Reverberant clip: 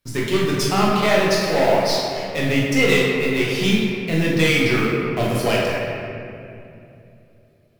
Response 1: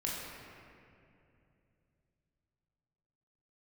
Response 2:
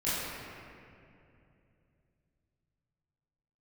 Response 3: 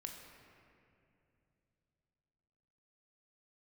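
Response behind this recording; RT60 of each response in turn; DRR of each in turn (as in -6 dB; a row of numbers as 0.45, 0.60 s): 1; 2.7, 2.7, 2.7 s; -5.0, -13.0, 2.0 dB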